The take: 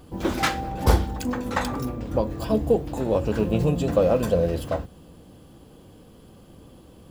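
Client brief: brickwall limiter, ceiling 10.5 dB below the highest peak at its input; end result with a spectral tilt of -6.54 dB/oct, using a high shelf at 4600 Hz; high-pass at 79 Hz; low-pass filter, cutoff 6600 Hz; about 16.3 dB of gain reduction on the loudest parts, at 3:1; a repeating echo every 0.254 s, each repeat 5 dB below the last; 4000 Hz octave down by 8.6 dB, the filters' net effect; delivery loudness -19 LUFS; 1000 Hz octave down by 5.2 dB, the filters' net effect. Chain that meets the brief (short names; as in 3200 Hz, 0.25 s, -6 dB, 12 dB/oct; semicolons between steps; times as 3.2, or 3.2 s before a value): HPF 79 Hz; LPF 6600 Hz; bell 1000 Hz -6.5 dB; bell 4000 Hz -6 dB; high shelf 4600 Hz -8.5 dB; compressor 3:1, threshold -39 dBFS; limiter -35 dBFS; feedback echo 0.254 s, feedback 56%, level -5 dB; gain +24.5 dB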